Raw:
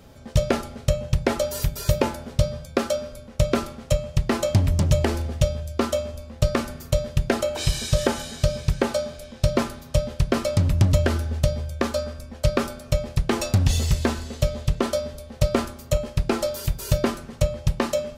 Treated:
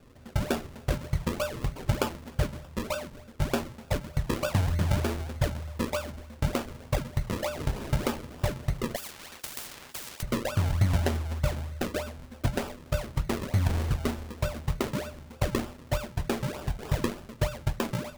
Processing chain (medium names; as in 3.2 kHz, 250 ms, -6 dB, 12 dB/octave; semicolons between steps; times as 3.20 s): decimation with a swept rate 41×, swing 100% 3.3 Hz; flange 0.57 Hz, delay 7.3 ms, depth 8.1 ms, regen -53%; 8.96–10.23 s: spectrum-flattening compressor 10:1; trim -2.5 dB